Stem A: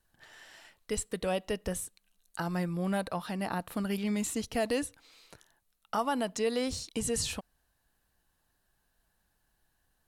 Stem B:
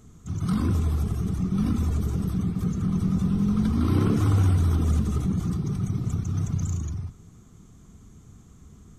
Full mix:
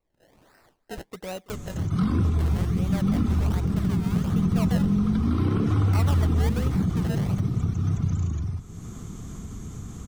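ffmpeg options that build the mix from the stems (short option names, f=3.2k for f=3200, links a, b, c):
-filter_complex "[0:a]acrusher=samples=26:mix=1:aa=0.000001:lfo=1:lforange=26:lforate=1.3,volume=-4dB,asplit=2[a][b];[b]volume=-22dB[c];[1:a]acrossover=split=4800[d][e];[e]acompressor=threshold=-59dB:ratio=4:attack=1:release=60[f];[d][f]amix=inputs=2:normalize=0,alimiter=limit=-16dB:level=0:latency=1:release=207,acompressor=mode=upward:threshold=-27dB:ratio=2.5,adelay=1500,volume=2dB[g];[c]aecho=0:1:329|658|987|1316|1645|1974|2303|2632|2961|3290:1|0.6|0.36|0.216|0.13|0.0778|0.0467|0.028|0.0168|0.0101[h];[a][g][h]amix=inputs=3:normalize=0"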